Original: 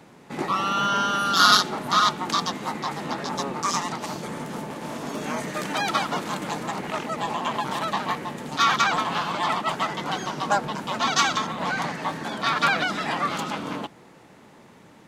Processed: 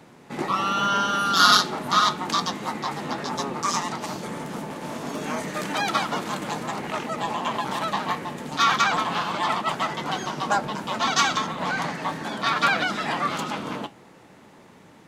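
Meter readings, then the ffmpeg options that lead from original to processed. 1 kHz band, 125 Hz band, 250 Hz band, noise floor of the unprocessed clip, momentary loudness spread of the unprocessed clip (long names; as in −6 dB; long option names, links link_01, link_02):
0.0 dB, 0.0 dB, 0.0 dB, −51 dBFS, 11 LU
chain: -af "flanger=delay=7.8:depth=4:regen=-73:speed=0.3:shape=triangular,volume=4.5dB"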